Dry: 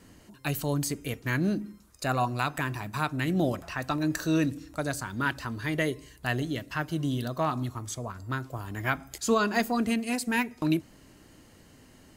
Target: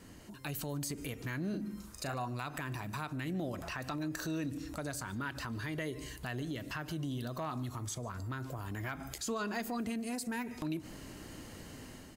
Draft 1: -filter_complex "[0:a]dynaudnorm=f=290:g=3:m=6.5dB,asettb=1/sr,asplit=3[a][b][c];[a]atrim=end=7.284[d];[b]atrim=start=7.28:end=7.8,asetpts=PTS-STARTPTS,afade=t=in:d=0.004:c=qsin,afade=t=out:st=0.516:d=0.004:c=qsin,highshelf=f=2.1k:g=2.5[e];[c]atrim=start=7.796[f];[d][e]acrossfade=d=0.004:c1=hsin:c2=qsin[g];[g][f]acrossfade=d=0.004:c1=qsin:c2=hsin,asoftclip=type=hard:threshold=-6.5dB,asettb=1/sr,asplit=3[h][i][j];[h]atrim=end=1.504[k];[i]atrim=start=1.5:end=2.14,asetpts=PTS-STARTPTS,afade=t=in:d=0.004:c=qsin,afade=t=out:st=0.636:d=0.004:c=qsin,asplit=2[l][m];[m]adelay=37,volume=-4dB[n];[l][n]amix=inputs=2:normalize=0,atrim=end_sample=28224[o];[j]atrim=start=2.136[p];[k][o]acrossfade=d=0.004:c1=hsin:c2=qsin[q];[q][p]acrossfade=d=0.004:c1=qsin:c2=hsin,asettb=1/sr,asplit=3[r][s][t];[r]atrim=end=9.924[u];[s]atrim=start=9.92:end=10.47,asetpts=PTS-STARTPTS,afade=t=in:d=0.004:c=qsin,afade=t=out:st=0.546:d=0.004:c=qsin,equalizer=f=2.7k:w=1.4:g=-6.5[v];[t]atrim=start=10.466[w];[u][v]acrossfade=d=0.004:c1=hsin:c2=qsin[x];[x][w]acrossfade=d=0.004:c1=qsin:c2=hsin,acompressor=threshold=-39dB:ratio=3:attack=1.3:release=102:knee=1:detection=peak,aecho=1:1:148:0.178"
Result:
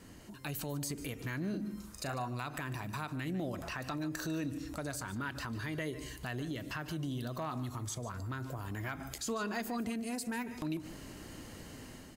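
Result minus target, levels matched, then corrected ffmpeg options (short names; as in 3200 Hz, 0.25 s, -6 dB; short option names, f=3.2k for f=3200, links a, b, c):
echo-to-direct +7.5 dB
-filter_complex "[0:a]dynaudnorm=f=290:g=3:m=6.5dB,asettb=1/sr,asplit=3[a][b][c];[a]atrim=end=7.284[d];[b]atrim=start=7.28:end=7.8,asetpts=PTS-STARTPTS,afade=t=in:d=0.004:c=qsin,afade=t=out:st=0.516:d=0.004:c=qsin,highshelf=f=2.1k:g=2.5[e];[c]atrim=start=7.796[f];[d][e]acrossfade=d=0.004:c1=hsin:c2=qsin[g];[g][f]acrossfade=d=0.004:c1=qsin:c2=hsin,asoftclip=type=hard:threshold=-6.5dB,asettb=1/sr,asplit=3[h][i][j];[h]atrim=end=1.504[k];[i]atrim=start=1.5:end=2.14,asetpts=PTS-STARTPTS,afade=t=in:d=0.004:c=qsin,afade=t=out:st=0.636:d=0.004:c=qsin,asplit=2[l][m];[m]adelay=37,volume=-4dB[n];[l][n]amix=inputs=2:normalize=0,atrim=end_sample=28224[o];[j]atrim=start=2.136[p];[k][o]acrossfade=d=0.004:c1=hsin:c2=qsin[q];[q][p]acrossfade=d=0.004:c1=qsin:c2=hsin,asettb=1/sr,asplit=3[r][s][t];[r]atrim=end=9.924[u];[s]atrim=start=9.92:end=10.47,asetpts=PTS-STARTPTS,afade=t=in:d=0.004:c=qsin,afade=t=out:st=0.546:d=0.004:c=qsin,equalizer=f=2.7k:w=1.4:g=-6.5[v];[t]atrim=start=10.466[w];[u][v]acrossfade=d=0.004:c1=hsin:c2=qsin[x];[x][w]acrossfade=d=0.004:c1=qsin:c2=hsin,acompressor=threshold=-39dB:ratio=3:attack=1.3:release=102:knee=1:detection=peak,aecho=1:1:148:0.075"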